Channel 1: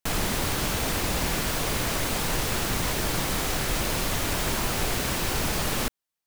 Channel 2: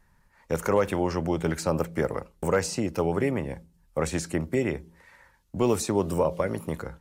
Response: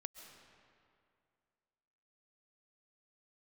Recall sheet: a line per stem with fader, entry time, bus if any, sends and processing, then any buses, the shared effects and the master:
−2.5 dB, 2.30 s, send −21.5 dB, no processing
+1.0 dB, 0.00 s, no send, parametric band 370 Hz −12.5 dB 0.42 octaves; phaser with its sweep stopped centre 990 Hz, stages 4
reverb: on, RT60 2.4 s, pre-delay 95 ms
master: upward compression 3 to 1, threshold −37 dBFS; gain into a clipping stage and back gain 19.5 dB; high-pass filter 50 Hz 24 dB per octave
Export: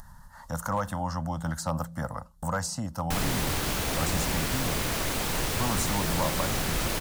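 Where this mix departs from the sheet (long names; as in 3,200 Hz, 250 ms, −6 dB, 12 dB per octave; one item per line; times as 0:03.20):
stem 1: entry 2.30 s → 3.05 s
master: missing high-pass filter 50 Hz 24 dB per octave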